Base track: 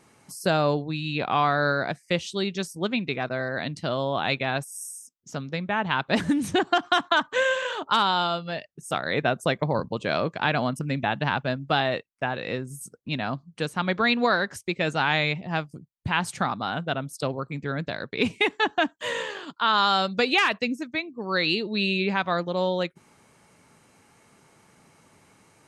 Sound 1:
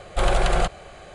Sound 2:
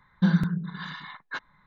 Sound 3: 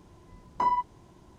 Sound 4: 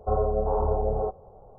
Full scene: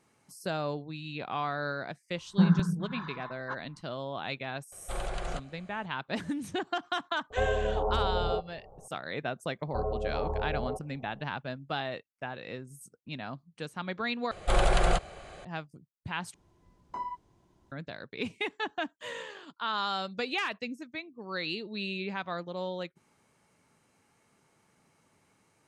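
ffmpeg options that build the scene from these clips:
ffmpeg -i bed.wav -i cue0.wav -i cue1.wav -i cue2.wav -i cue3.wav -filter_complex "[1:a]asplit=2[link_01][link_02];[4:a]asplit=2[link_03][link_04];[0:a]volume=-10.5dB[link_05];[2:a]highshelf=frequency=1600:width_type=q:width=1.5:gain=-11[link_06];[link_01]aresample=22050,aresample=44100[link_07];[link_03]alimiter=limit=-17.5dB:level=0:latency=1:release=71[link_08];[link_05]asplit=3[link_09][link_10][link_11];[link_09]atrim=end=14.314[link_12];[link_02]atrim=end=1.14,asetpts=PTS-STARTPTS,volume=-4dB[link_13];[link_10]atrim=start=15.446:end=16.344[link_14];[3:a]atrim=end=1.38,asetpts=PTS-STARTPTS,volume=-11.5dB[link_15];[link_11]atrim=start=17.716[link_16];[link_06]atrim=end=1.66,asetpts=PTS-STARTPTS,volume=-1.5dB,afade=type=in:duration=0.004:curve=hsin,afade=type=out:start_time=1.656:duration=0.004:curve=hsin,adelay=2160[link_17];[link_07]atrim=end=1.14,asetpts=PTS-STARTPTS,volume=-15dB,afade=type=in:duration=0.004:curve=hsin,afade=type=out:start_time=1.136:duration=0.004:curve=hsin,adelay=4720[link_18];[link_08]atrim=end=1.58,asetpts=PTS-STARTPTS,volume=-3dB,afade=type=in:duration=0.004:curve=hsin,afade=type=out:start_time=1.576:duration=0.004:curve=hsin,adelay=321930S[link_19];[link_04]atrim=end=1.58,asetpts=PTS-STARTPTS,volume=-8dB,afade=type=in:duration=0.004:curve=hsin,afade=type=out:start_time=1.576:duration=0.004:curve=hsin,adelay=9670[link_20];[link_12][link_13]acrossfade=duration=0.004:curve1=hsin:curve2=hsin[link_21];[link_21][link_14]acrossfade=duration=0.004:curve1=hsin:curve2=hsin[link_22];[link_22][link_15]acrossfade=duration=0.004:curve1=hsin:curve2=hsin[link_23];[link_23][link_16]acrossfade=duration=0.004:curve1=hsin:curve2=hsin[link_24];[link_24][link_17][link_18][link_19][link_20]amix=inputs=5:normalize=0" out.wav

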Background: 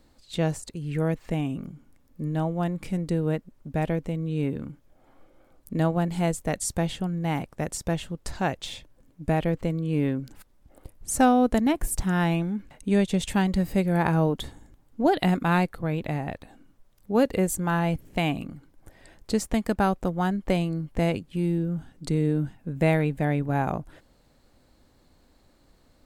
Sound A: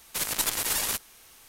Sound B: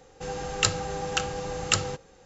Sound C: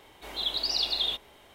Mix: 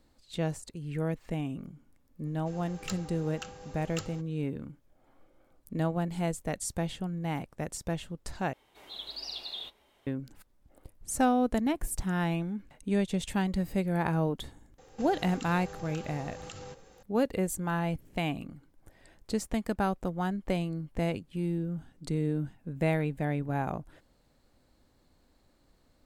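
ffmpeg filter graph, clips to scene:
ffmpeg -i bed.wav -i cue0.wav -i cue1.wav -i cue2.wav -filter_complex "[2:a]asplit=2[link_01][link_02];[0:a]volume=-6dB[link_03];[link_01]volume=12dB,asoftclip=hard,volume=-12dB[link_04];[3:a]flanger=delay=3.2:depth=7.2:regen=-41:speed=1.5:shape=sinusoidal[link_05];[link_02]acompressor=threshold=-38dB:ratio=12:attack=1.6:release=68:knee=1:detection=peak[link_06];[link_03]asplit=2[link_07][link_08];[link_07]atrim=end=8.534[link_09];[link_05]atrim=end=1.54,asetpts=PTS-STARTPTS,volume=-7.5dB[link_10];[link_08]atrim=start=10.066[link_11];[link_04]atrim=end=2.25,asetpts=PTS-STARTPTS,volume=-15dB,afade=type=in:duration=0.004:curve=hsin,afade=type=out:start_time=2.246:duration=0.004:curve=hsin,adelay=2250[link_12];[link_06]atrim=end=2.25,asetpts=PTS-STARTPTS,volume=-2dB,afade=type=in:duration=0.004:curve=hsin,afade=type=out:start_time=2.246:duration=0.004:curve=hsin,adelay=14780[link_13];[link_09][link_10]acrossfade=duration=0.004:curve1=hsin:curve2=hsin[link_14];[link_14][link_11]acrossfade=duration=0.004:curve1=hsin:curve2=hsin[link_15];[link_15][link_12][link_13]amix=inputs=3:normalize=0" out.wav

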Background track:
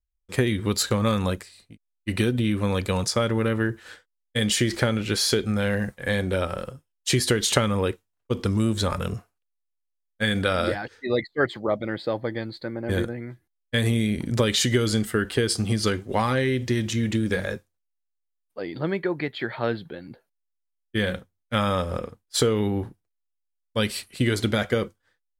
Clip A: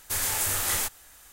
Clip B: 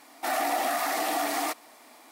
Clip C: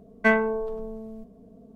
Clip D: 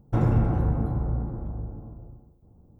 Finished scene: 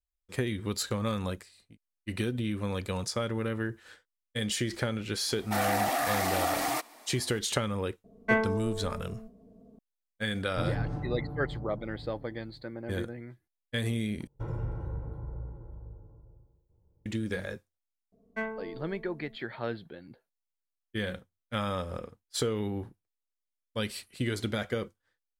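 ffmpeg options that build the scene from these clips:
ffmpeg -i bed.wav -i cue0.wav -i cue1.wav -i cue2.wav -i cue3.wav -filter_complex "[3:a]asplit=2[link_01][link_02];[4:a]asplit=2[link_03][link_04];[0:a]volume=-8.5dB[link_05];[link_03]aecho=1:1:6.8:0.65[link_06];[link_04]aecho=1:1:2.1:0.7[link_07];[link_05]asplit=2[link_08][link_09];[link_08]atrim=end=14.274[link_10];[link_07]atrim=end=2.79,asetpts=PTS-STARTPTS,volume=-15dB[link_11];[link_09]atrim=start=17.056[link_12];[2:a]atrim=end=2.11,asetpts=PTS-STARTPTS,volume=-1.5dB,afade=type=in:duration=0.004:curve=hsin,afade=type=out:start_time=2.106:duration=0.004:curve=hsin,adelay=5280[link_13];[link_01]atrim=end=1.75,asetpts=PTS-STARTPTS,volume=-5.5dB,afade=type=in:duration=0.004:curve=hsin,afade=type=out:start_time=1.746:duration=0.004:curve=hsin,adelay=8040[link_14];[link_06]atrim=end=2.79,asetpts=PTS-STARTPTS,volume=-12dB,afade=type=in:duration=0.004:curve=hsin,afade=type=out:start_time=2.786:duration=0.004:curve=hsin,adelay=10440[link_15];[link_02]atrim=end=1.75,asetpts=PTS-STARTPTS,volume=-14.5dB,afade=type=in:duration=0.004:curve=hsin,afade=type=out:start_time=1.746:duration=0.004:curve=hsin,adelay=799092S[link_16];[link_10][link_11]acrossfade=duration=0.004:curve1=hsin:curve2=hsin[link_17];[link_17][link_12]acrossfade=duration=0.004:curve1=hsin:curve2=hsin[link_18];[link_18][link_13][link_14][link_15][link_16]amix=inputs=5:normalize=0" out.wav

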